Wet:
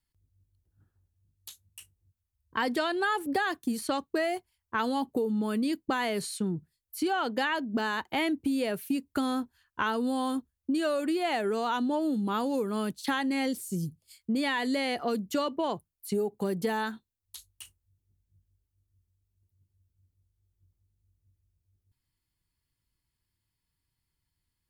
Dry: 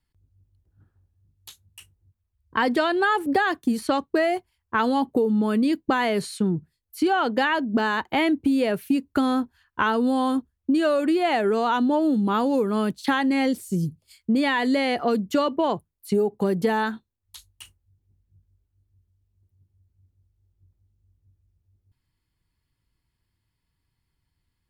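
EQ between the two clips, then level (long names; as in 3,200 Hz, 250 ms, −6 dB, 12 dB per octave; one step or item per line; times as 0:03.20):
high-shelf EQ 4,400 Hz +9.5 dB
−7.5 dB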